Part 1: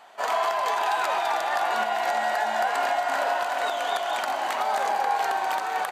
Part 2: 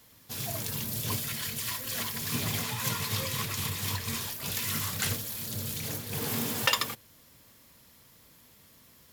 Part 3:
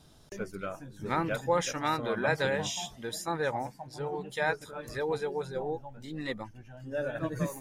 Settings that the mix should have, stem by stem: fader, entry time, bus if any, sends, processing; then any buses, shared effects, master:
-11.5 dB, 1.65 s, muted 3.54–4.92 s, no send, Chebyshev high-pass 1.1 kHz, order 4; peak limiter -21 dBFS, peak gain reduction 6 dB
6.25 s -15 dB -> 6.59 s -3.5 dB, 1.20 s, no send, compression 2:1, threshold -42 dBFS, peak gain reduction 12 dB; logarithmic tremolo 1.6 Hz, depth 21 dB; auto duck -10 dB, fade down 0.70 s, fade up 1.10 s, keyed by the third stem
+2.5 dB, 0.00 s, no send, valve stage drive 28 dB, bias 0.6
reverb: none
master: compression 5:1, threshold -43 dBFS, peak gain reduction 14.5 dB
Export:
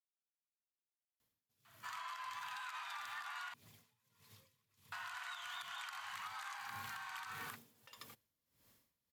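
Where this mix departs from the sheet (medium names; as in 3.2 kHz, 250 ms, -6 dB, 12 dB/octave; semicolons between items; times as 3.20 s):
stem 2 -15.0 dB -> -23.5 dB; stem 3: muted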